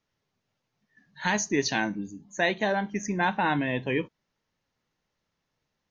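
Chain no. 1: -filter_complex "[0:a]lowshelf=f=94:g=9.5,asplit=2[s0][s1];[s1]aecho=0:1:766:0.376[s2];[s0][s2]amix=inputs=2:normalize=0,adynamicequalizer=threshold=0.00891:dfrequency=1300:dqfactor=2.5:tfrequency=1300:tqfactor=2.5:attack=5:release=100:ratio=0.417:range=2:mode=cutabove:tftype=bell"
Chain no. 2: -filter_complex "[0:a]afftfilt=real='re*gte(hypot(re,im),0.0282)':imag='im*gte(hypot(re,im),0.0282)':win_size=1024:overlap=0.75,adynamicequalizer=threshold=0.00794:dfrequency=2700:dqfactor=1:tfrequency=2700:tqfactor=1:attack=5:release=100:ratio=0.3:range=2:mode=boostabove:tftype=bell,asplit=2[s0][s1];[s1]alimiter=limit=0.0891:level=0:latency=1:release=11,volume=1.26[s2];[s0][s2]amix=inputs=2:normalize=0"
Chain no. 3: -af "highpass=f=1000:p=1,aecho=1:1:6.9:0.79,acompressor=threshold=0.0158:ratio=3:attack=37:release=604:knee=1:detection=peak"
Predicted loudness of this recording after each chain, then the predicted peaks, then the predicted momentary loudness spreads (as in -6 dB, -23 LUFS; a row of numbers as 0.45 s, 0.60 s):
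-27.5 LUFS, -22.0 LUFS, -36.5 LUFS; -11.0 dBFS, -7.0 dBFS, -19.5 dBFS; 11 LU, 8 LU, 9 LU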